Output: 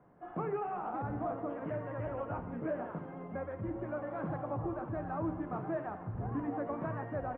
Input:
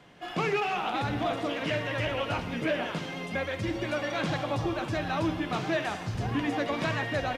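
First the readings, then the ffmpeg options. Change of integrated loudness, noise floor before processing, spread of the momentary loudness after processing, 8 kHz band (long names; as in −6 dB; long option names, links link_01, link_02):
−8.0 dB, −39 dBFS, 4 LU, below −30 dB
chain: -af "lowpass=frequency=1300:width=0.5412,lowpass=frequency=1300:width=1.3066,volume=-6.5dB"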